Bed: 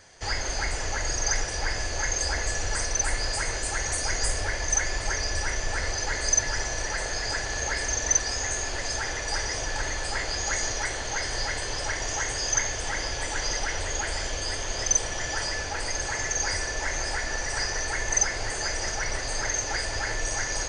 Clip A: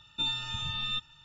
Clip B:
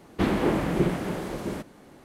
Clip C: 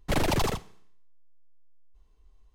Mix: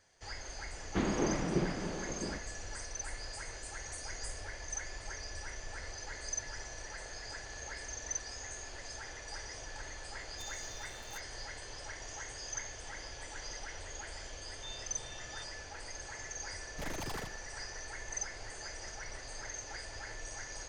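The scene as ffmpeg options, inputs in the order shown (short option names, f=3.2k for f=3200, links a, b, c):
-filter_complex "[1:a]asplit=2[a][b];[0:a]volume=-15.5dB[c];[2:a]lowpass=f=7.1k:w=0.5412,lowpass=f=7.1k:w=1.3066[d];[a]acrusher=bits=5:dc=4:mix=0:aa=0.000001[e];[b]asplit=2[f][g];[g]afreqshift=-2.7[h];[f][h]amix=inputs=2:normalize=1[i];[3:a]asoftclip=type=tanh:threshold=-30dB[j];[d]atrim=end=2.04,asetpts=PTS-STARTPTS,volume=-8.5dB,afade=t=in:d=0.004:c=hsin,afade=t=out:st=2.036:d=0.004:c=hsin,adelay=760[k];[e]atrim=end=1.24,asetpts=PTS-STARTPTS,volume=-16dB,afade=t=in:d=0.004:c=hsin,afade=t=out:st=1.236:d=0.004:c=hsin,adelay=10200[l];[i]atrim=end=1.24,asetpts=PTS-STARTPTS,volume=-16.5dB,afade=t=in:d=0.004:c=hsin,afade=t=out:st=1.236:d=0.004:c=hsin,adelay=636804S[m];[j]atrim=end=2.54,asetpts=PTS-STARTPTS,volume=-8dB,afade=t=in:d=0.004:c=hsin,afade=t=out:st=2.536:d=0.004:c=hsin,adelay=16700[n];[c][k][l][m][n]amix=inputs=5:normalize=0"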